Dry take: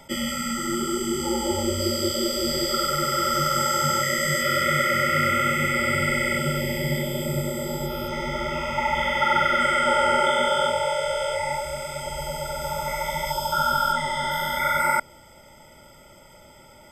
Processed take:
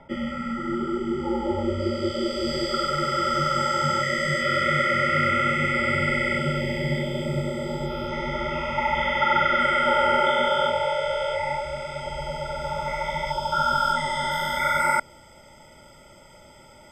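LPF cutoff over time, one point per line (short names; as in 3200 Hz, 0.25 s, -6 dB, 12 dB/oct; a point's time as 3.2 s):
1.56 s 1700 Hz
2.54 s 4100 Hz
13.42 s 4100 Hz
14.12 s 9200 Hz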